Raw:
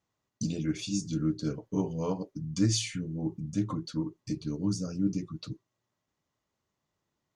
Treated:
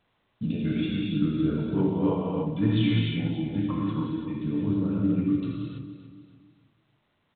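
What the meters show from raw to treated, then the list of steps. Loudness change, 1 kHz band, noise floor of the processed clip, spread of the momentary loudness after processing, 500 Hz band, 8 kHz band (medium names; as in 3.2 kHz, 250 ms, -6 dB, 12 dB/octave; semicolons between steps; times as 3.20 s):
+5.5 dB, +6.5 dB, -72 dBFS, 9 LU, +6.0 dB, under -40 dB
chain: feedback delay 285 ms, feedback 45%, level -12.5 dB; gated-style reverb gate 360 ms flat, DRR -4.5 dB; A-law 64 kbps 8 kHz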